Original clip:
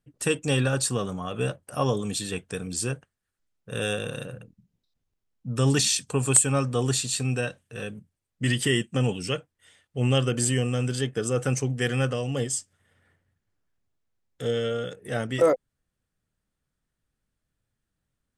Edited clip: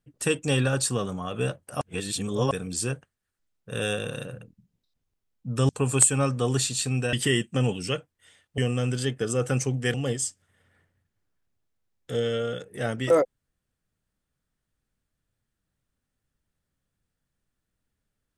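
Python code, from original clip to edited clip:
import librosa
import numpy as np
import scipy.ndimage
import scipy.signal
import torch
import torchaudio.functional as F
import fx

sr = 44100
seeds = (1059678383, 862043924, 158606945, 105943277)

y = fx.edit(x, sr, fx.reverse_span(start_s=1.81, length_s=0.7),
    fx.cut(start_s=5.69, length_s=0.34),
    fx.cut(start_s=7.47, length_s=1.06),
    fx.cut(start_s=9.98, length_s=0.56),
    fx.cut(start_s=11.9, length_s=0.35), tone=tone)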